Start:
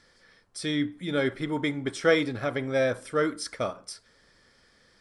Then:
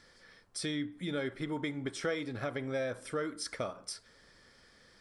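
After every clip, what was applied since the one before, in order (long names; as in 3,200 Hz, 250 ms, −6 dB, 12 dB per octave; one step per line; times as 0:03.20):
downward compressor 3 to 1, threshold −35 dBFS, peak gain reduction 14 dB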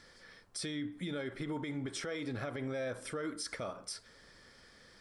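brickwall limiter −32 dBFS, peak gain reduction 11 dB
level +2 dB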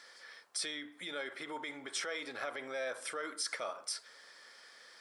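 high-pass filter 660 Hz 12 dB per octave
level +4 dB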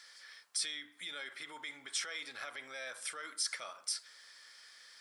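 guitar amp tone stack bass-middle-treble 5-5-5
level +8.5 dB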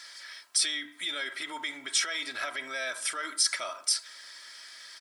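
comb filter 3.1 ms, depth 61%
level +8.5 dB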